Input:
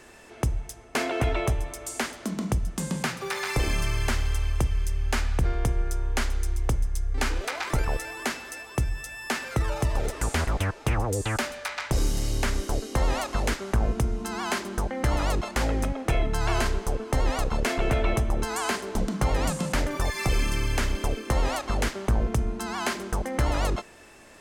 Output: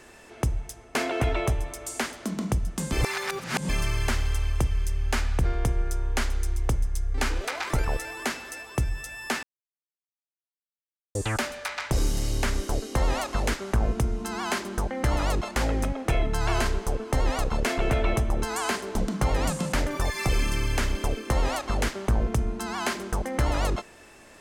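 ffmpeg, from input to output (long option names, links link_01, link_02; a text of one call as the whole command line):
ffmpeg -i in.wav -filter_complex "[0:a]asplit=5[link_01][link_02][link_03][link_04][link_05];[link_01]atrim=end=2.922[link_06];[link_02]atrim=start=2.918:end=3.692,asetpts=PTS-STARTPTS,areverse[link_07];[link_03]atrim=start=3.688:end=9.43,asetpts=PTS-STARTPTS,afade=type=out:start_time=5.738:duration=0.004:curve=hsin[link_08];[link_04]atrim=start=9.43:end=11.15,asetpts=PTS-STARTPTS,volume=0[link_09];[link_05]atrim=start=11.15,asetpts=PTS-STARTPTS,afade=type=in:duration=0.004:curve=hsin[link_10];[link_06][link_07]acrossfade=duration=0.004:curve1=hsin:curve2=hsin[link_11];[link_08][link_09][link_10]concat=n=3:v=0:a=1[link_12];[link_11][link_12]acrossfade=duration=0.004:curve1=hsin:curve2=hsin" out.wav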